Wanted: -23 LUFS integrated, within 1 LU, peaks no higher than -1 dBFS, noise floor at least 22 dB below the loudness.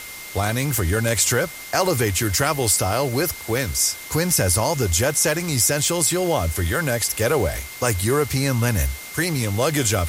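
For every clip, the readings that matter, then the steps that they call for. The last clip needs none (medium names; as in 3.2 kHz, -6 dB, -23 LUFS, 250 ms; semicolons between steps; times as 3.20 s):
steady tone 2.1 kHz; tone level -38 dBFS; noise floor -36 dBFS; noise floor target -43 dBFS; loudness -20.5 LUFS; peak level -5.5 dBFS; loudness target -23.0 LUFS
-> band-stop 2.1 kHz, Q 30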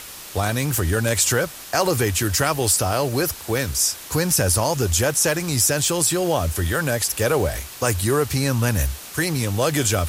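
steady tone not found; noise floor -38 dBFS; noise floor target -43 dBFS
-> noise reduction 6 dB, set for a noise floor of -38 dBFS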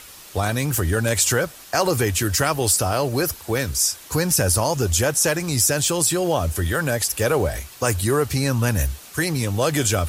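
noise floor -43 dBFS; loudness -20.5 LUFS; peak level -5.5 dBFS; loudness target -23.0 LUFS
-> trim -2.5 dB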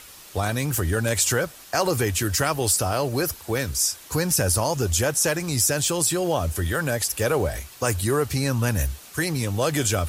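loudness -23.0 LUFS; peak level -8.0 dBFS; noise floor -45 dBFS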